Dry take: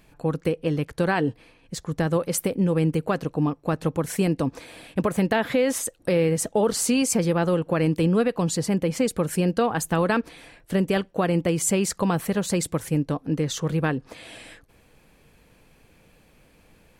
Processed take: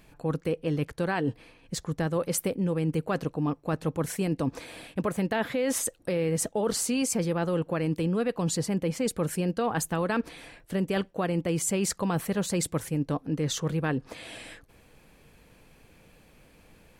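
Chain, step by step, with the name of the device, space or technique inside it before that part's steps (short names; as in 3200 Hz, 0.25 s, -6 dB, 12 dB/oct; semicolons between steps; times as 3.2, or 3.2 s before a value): compression on the reversed sound (reverse; compressor, threshold -24 dBFS, peak gain reduction 7.5 dB; reverse)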